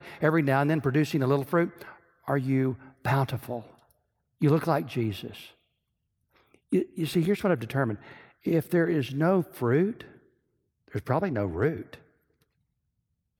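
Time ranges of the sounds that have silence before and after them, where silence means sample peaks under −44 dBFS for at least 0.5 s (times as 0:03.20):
0:04.41–0:05.50
0:06.54–0:10.15
0:10.88–0:11.97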